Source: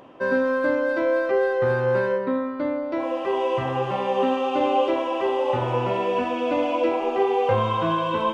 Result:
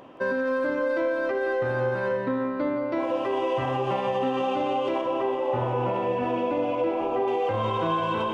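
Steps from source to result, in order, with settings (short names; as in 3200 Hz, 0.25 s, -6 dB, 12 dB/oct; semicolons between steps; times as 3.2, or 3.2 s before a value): 5.01–7.28 high shelf 2400 Hz -10 dB; limiter -18.5 dBFS, peak gain reduction 9 dB; split-band echo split 850 Hz, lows 0.488 s, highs 0.172 s, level -9.5 dB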